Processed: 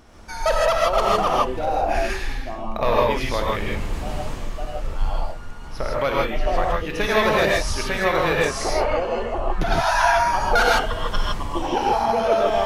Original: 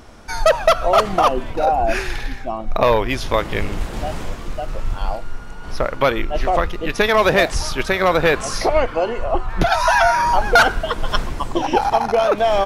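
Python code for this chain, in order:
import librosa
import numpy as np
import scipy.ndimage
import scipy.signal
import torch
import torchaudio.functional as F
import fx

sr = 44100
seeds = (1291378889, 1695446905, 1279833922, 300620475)

y = fx.rev_gated(x, sr, seeds[0], gate_ms=180, shape='rising', drr_db=-3.5)
y = y * 10.0 ** (-8.0 / 20.0)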